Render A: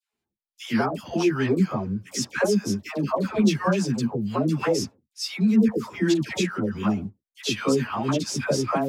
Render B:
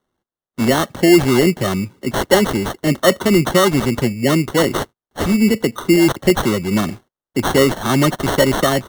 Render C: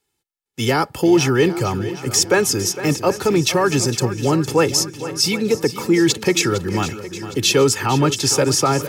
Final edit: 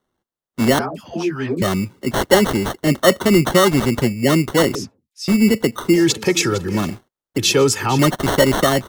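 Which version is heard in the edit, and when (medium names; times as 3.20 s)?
B
0.79–1.62 s: from A
4.75–5.28 s: from A
5.95–6.79 s: from C, crossfade 0.24 s
7.38–7.99 s: from C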